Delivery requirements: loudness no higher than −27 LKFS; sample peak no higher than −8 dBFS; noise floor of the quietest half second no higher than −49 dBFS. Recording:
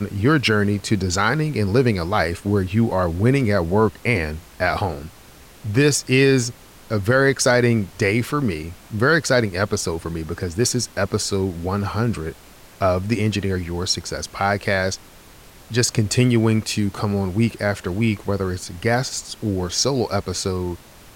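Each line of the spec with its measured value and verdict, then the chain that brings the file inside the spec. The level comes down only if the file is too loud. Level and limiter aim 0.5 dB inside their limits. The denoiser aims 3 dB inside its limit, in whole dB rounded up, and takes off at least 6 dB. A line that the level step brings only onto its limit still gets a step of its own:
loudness −20.5 LKFS: out of spec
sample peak −5.5 dBFS: out of spec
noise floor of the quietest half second −45 dBFS: out of spec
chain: level −7 dB

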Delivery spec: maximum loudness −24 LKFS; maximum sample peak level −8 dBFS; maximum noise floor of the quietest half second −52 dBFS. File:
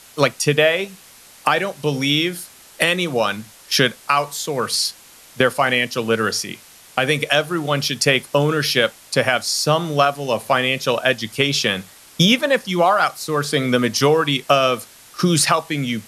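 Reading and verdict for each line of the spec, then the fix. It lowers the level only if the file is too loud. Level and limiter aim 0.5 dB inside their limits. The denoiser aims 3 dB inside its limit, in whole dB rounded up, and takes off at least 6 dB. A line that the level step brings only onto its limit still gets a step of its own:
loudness −18.5 LKFS: out of spec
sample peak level −1.5 dBFS: out of spec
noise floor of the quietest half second −45 dBFS: out of spec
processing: broadband denoise 6 dB, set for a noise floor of −45 dBFS
level −6 dB
brickwall limiter −8.5 dBFS

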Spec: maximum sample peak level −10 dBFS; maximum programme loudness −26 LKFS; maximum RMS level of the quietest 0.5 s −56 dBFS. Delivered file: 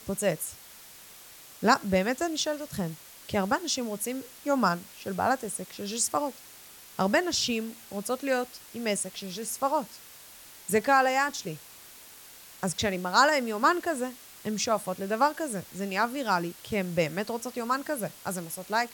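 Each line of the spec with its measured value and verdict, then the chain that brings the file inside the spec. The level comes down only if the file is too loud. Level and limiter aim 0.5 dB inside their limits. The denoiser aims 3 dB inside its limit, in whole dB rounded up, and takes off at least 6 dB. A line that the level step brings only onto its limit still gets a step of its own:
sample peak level −6.0 dBFS: out of spec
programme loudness −28.5 LKFS: in spec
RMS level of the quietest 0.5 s −50 dBFS: out of spec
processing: broadband denoise 9 dB, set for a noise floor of −50 dBFS
brickwall limiter −10.5 dBFS

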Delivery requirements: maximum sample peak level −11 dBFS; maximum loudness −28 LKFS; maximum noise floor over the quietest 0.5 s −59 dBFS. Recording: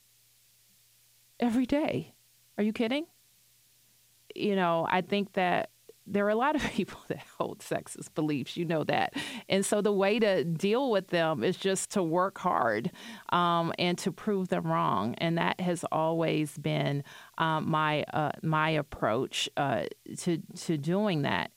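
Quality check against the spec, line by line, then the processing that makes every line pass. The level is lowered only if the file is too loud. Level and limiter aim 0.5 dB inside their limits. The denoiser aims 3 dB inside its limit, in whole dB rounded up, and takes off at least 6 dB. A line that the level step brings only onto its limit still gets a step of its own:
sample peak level −12.5 dBFS: in spec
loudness −29.5 LKFS: in spec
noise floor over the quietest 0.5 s −64 dBFS: in spec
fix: no processing needed

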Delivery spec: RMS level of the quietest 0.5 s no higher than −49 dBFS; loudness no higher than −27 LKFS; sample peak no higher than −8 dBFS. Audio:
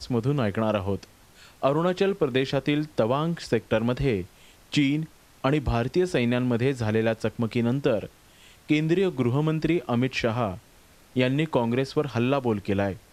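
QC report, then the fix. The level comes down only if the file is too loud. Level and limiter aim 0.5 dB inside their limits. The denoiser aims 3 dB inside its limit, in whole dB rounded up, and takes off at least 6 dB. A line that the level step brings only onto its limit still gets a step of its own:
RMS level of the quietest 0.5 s −54 dBFS: in spec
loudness −25.5 LKFS: out of spec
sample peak −8.5 dBFS: in spec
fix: level −2 dB

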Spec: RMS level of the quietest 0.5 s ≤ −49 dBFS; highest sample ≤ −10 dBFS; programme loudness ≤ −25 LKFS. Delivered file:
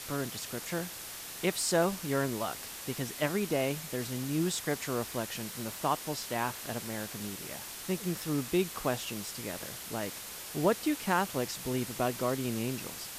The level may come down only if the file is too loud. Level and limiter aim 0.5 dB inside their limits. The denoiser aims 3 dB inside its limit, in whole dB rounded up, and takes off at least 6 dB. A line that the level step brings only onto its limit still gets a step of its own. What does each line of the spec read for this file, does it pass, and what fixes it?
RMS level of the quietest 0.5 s −43 dBFS: out of spec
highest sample −15.0 dBFS: in spec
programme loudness −33.5 LKFS: in spec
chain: broadband denoise 9 dB, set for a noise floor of −43 dBFS

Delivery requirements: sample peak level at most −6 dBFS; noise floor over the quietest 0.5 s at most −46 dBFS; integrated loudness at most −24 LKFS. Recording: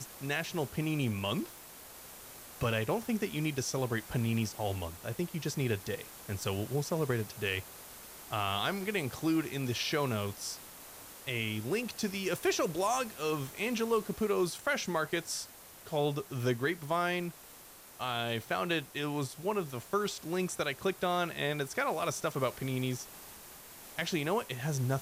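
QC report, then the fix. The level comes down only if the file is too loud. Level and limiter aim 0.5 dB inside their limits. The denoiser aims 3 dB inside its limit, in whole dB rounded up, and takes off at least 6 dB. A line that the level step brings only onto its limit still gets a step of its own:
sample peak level −19.0 dBFS: in spec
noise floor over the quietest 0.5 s −53 dBFS: in spec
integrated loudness −34.0 LKFS: in spec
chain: no processing needed

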